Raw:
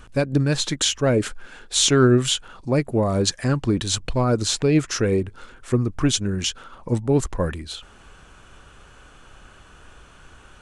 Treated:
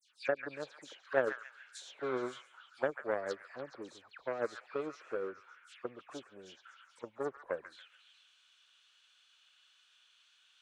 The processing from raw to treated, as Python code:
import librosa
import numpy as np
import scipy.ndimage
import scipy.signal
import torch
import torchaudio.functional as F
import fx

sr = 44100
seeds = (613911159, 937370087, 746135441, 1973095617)

p1 = fx.dispersion(x, sr, late='lows', ms=112.0, hz=2600.0)
p2 = 10.0 ** (-21.5 / 20.0) * np.tanh(p1 / 10.0 ** (-21.5 / 20.0))
p3 = p1 + (p2 * 10.0 ** (-6.0 / 20.0))
p4 = fx.high_shelf(p3, sr, hz=5200.0, db=-6.5)
p5 = fx.auto_wah(p4, sr, base_hz=540.0, top_hz=4500.0, q=2.7, full_db=-18.5, direction='down')
p6 = fx.cheby_harmonics(p5, sr, harmonics=(3,), levels_db=(-12,), full_scale_db=-10.5)
p7 = fx.tilt_eq(p6, sr, slope=3.5)
p8 = fx.echo_stepped(p7, sr, ms=140, hz=1700.0, octaves=0.7, feedback_pct=70, wet_db=-5.5)
y = p8 * 10.0 ** (-1.5 / 20.0)